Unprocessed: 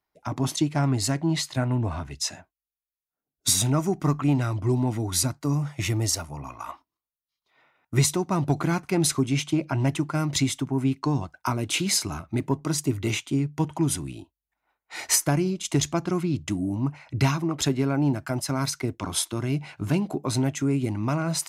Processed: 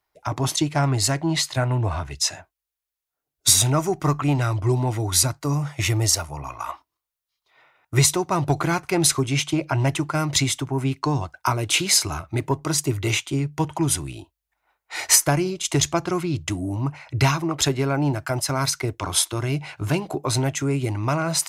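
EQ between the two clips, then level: bell 220 Hz -14.5 dB 0.7 oct; +6.0 dB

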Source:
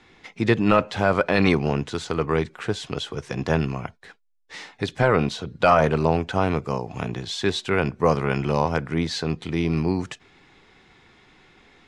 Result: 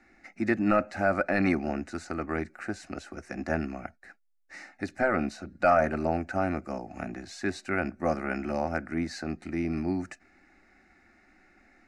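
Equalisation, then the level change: high shelf 5900 Hz -5 dB; fixed phaser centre 670 Hz, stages 8; -3.0 dB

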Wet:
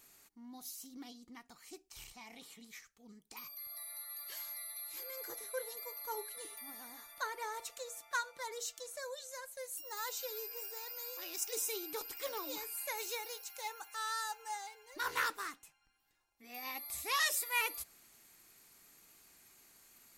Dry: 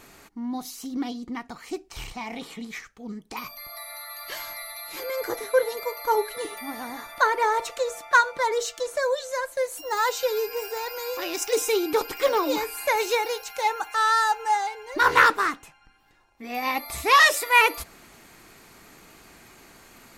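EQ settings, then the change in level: pre-emphasis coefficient 0.8; -7.0 dB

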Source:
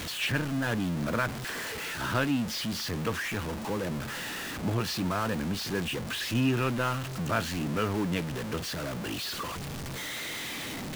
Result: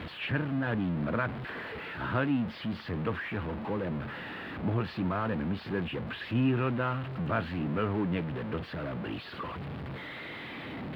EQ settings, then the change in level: HPF 48 Hz; air absorption 350 m; bell 6000 Hz -12 dB 0.51 oct; 0.0 dB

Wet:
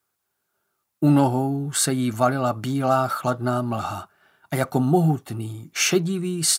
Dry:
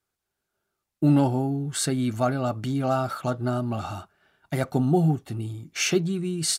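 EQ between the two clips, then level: HPF 89 Hz; bell 1100 Hz +5.5 dB 1.2 oct; high shelf 9700 Hz +11 dB; +2.0 dB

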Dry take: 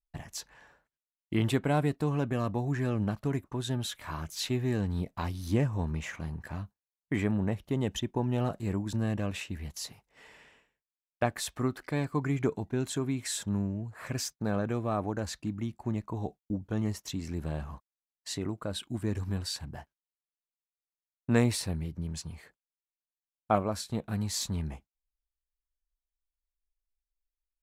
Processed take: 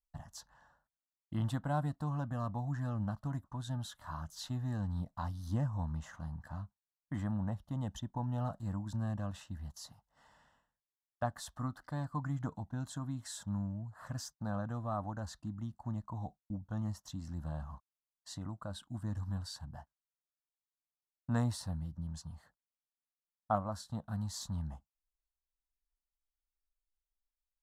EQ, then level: LPF 4000 Hz 6 dB/oct; fixed phaser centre 970 Hz, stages 4; -3.5 dB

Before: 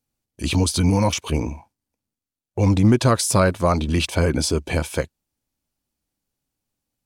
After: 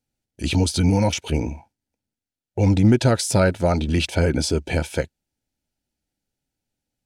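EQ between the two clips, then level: Butterworth band-stop 1100 Hz, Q 3.4; high shelf 11000 Hz -10.5 dB; 0.0 dB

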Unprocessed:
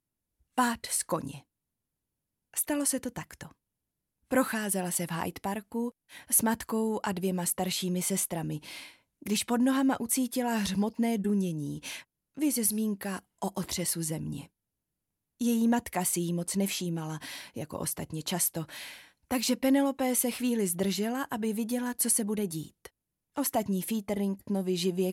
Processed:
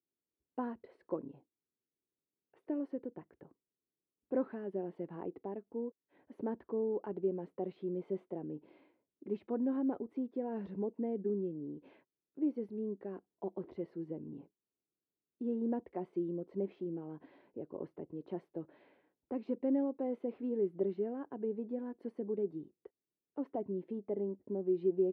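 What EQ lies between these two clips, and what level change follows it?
band-pass 390 Hz, Q 2.9; air absorption 370 m; +1.0 dB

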